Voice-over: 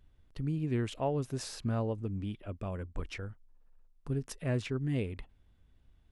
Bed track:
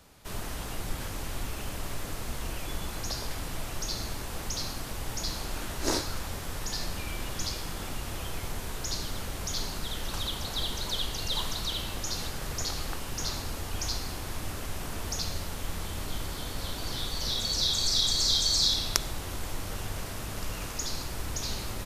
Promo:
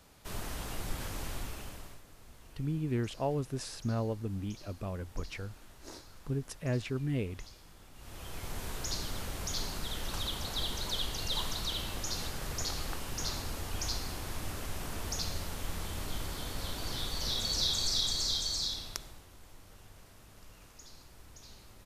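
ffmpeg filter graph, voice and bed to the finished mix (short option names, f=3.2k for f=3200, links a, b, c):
-filter_complex "[0:a]adelay=2200,volume=-0.5dB[a];[1:a]volume=14dB,afade=t=out:st=1.26:d=0.76:silence=0.141254,afade=t=in:st=7.93:d=0.72:silence=0.141254,afade=t=out:st=17.58:d=1.7:silence=0.149624[b];[a][b]amix=inputs=2:normalize=0"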